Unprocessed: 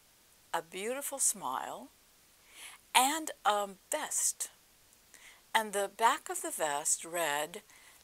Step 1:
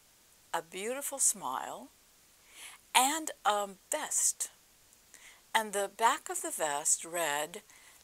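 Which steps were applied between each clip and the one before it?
parametric band 7,100 Hz +3.5 dB 0.45 octaves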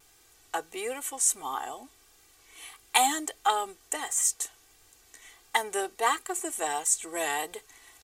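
comb filter 2.6 ms, depth 76%
pitch vibrato 1.5 Hz 38 cents
level +1 dB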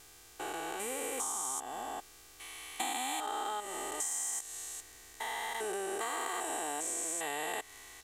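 spectrum averaged block by block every 400 ms
downward compressor 5 to 1, threshold −39 dBFS, peak gain reduction 10 dB
level +5.5 dB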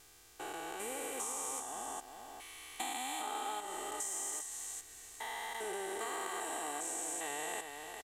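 single-tap delay 404 ms −6.5 dB
level −4 dB

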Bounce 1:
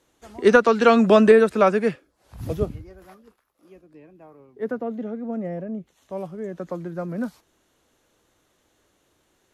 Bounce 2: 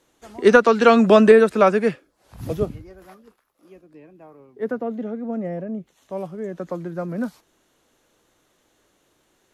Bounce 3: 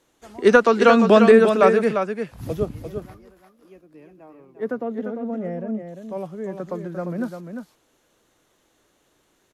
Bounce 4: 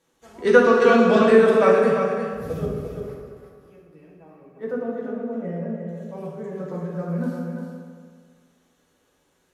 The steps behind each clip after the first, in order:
parametric band 72 Hz −7 dB 0.87 octaves; level +2 dB
single-tap delay 348 ms −7 dB; level −1 dB
convolution reverb RT60 1.8 s, pre-delay 3 ms, DRR −4 dB; level −7 dB

